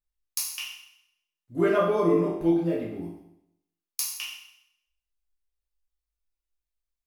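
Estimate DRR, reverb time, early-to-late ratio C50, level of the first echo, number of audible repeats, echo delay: -6.5 dB, 0.75 s, 3.0 dB, no echo, no echo, no echo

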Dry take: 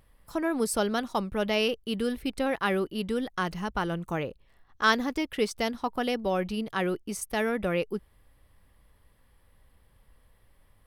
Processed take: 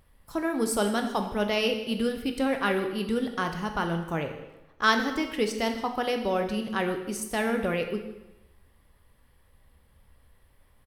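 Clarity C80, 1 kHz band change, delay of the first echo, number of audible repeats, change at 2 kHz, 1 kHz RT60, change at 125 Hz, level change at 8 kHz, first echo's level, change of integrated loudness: 9.5 dB, +1.5 dB, 156 ms, 1, +1.0 dB, 1.0 s, +1.0 dB, +1.0 dB, -19.5 dB, +1.0 dB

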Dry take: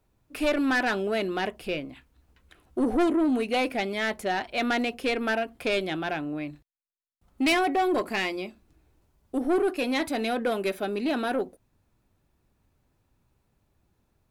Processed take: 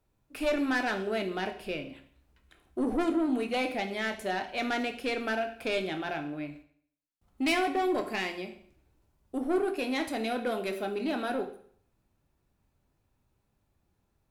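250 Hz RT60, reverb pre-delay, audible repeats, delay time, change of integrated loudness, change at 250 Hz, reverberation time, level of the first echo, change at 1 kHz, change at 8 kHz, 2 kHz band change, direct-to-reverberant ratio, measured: 0.55 s, 17 ms, no echo, no echo, -4.0 dB, -4.0 dB, 0.55 s, no echo, -4.0 dB, -4.0 dB, -4.0 dB, 6.0 dB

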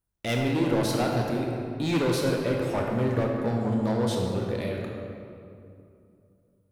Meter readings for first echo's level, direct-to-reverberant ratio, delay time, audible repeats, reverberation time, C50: no echo, -0.5 dB, no echo, no echo, 2.5 s, 1.0 dB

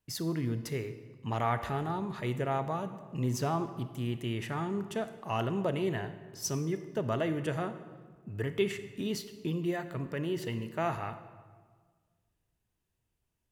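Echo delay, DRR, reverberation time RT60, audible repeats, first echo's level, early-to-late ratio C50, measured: no echo, 10.0 dB, 1.6 s, no echo, no echo, 11.0 dB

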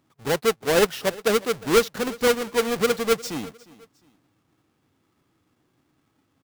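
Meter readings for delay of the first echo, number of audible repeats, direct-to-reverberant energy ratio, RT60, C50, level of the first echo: 356 ms, 2, no reverb, no reverb, no reverb, -21.0 dB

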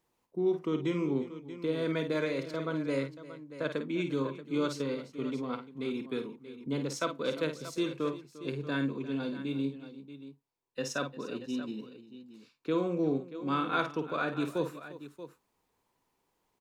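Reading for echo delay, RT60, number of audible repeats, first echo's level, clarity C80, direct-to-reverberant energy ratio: 51 ms, no reverb, 3, -8.5 dB, no reverb, no reverb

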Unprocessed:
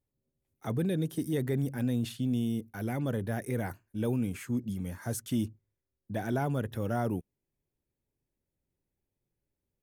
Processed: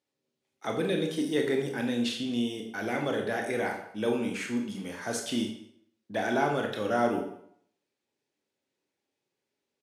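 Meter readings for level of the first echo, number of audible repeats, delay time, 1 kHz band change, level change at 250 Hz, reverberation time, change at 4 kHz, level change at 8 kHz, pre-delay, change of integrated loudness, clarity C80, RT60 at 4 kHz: -21.0 dB, 1, 201 ms, +7.5 dB, +1.0 dB, 0.65 s, +11.0 dB, +4.0 dB, 21 ms, +2.5 dB, 9.0 dB, 0.55 s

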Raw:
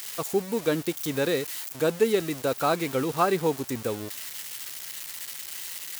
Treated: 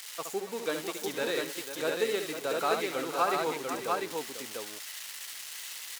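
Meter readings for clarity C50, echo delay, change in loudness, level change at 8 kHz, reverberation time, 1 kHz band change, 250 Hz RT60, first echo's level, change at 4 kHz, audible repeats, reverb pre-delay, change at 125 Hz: no reverb, 69 ms, -4.5 dB, -3.5 dB, no reverb, -2.0 dB, no reverb, -6.5 dB, -1.0 dB, 4, no reverb, -15.5 dB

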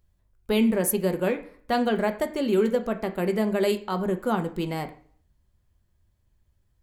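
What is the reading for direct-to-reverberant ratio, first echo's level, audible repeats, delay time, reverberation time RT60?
6.0 dB, no echo, no echo, no echo, 0.50 s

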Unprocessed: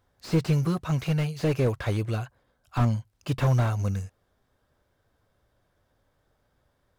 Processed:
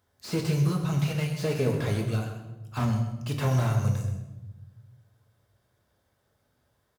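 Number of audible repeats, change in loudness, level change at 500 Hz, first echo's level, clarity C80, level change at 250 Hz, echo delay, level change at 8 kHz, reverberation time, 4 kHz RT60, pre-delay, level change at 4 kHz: 1, -1.0 dB, -1.0 dB, -10.5 dB, 7.0 dB, -1.0 dB, 129 ms, +3.5 dB, 1.1 s, 0.70 s, 5 ms, +1.5 dB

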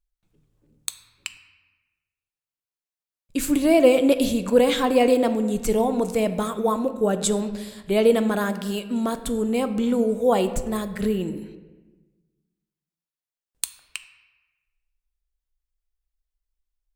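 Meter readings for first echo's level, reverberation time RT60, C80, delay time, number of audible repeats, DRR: no echo, 1.3 s, 13.5 dB, no echo, no echo, 9.5 dB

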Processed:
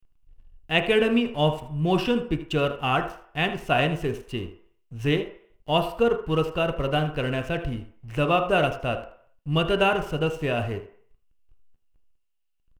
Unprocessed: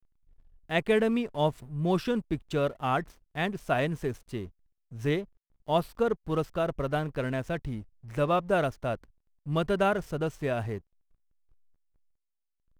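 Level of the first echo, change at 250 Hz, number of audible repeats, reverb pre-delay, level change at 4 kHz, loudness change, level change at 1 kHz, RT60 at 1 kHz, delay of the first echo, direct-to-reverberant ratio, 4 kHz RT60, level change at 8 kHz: -14.0 dB, +4.0 dB, 1, 3 ms, +11.0 dB, +5.0 dB, +4.5 dB, 0.60 s, 79 ms, 5.5 dB, 0.65 s, no reading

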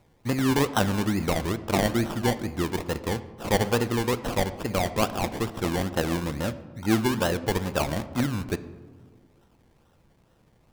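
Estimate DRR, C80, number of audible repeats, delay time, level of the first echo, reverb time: 11.0 dB, 15.5 dB, no echo, no echo, no echo, 1.5 s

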